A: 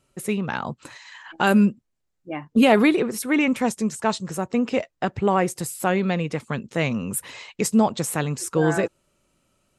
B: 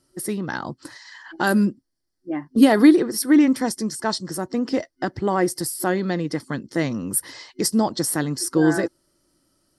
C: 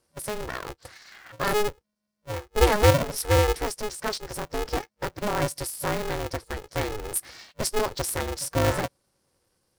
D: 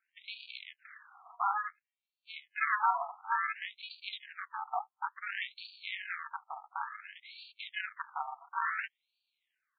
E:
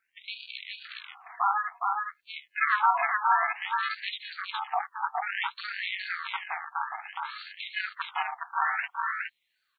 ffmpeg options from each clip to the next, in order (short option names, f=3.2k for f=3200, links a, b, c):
-af "superequalizer=6b=2.82:11b=1.41:12b=0.355:14b=3.55:16b=2.51,volume=-2dB"
-af "aeval=exprs='val(0)*sgn(sin(2*PI*210*n/s))':c=same,volume=-5.5dB"
-af "afftfilt=real='re*between(b*sr/1024,930*pow(3300/930,0.5+0.5*sin(2*PI*0.57*pts/sr))/1.41,930*pow(3300/930,0.5+0.5*sin(2*PI*0.57*pts/sr))*1.41)':imag='im*between(b*sr/1024,930*pow(3300/930,0.5+0.5*sin(2*PI*0.57*pts/sr))/1.41,930*pow(3300/930,0.5+0.5*sin(2*PI*0.57*pts/sr))*1.41)':win_size=1024:overlap=0.75"
-af "aecho=1:1:415:0.708,volume=5.5dB"